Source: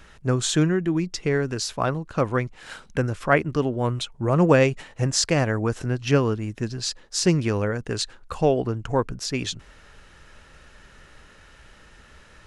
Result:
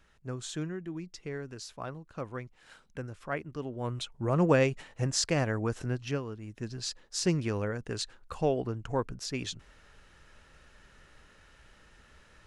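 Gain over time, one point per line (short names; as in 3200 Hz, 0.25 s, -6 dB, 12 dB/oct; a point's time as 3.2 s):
3.54 s -15.5 dB
4.07 s -7 dB
5.96 s -7 dB
6.25 s -17 dB
6.75 s -8 dB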